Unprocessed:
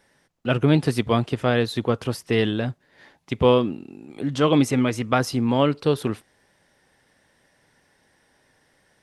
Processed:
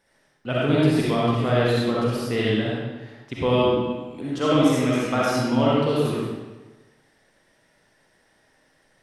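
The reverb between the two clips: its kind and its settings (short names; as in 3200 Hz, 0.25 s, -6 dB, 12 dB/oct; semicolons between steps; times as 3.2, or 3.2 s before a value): digital reverb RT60 1.2 s, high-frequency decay 0.85×, pre-delay 20 ms, DRR -6.5 dB; gain -6.5 dB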